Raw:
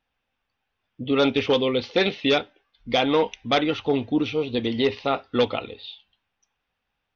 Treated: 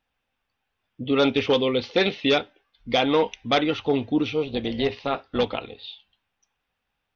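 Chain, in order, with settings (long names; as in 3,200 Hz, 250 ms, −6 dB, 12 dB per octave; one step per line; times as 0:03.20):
0:04.44–0:05.82: amplitude modulation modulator 290 Hz, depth 35%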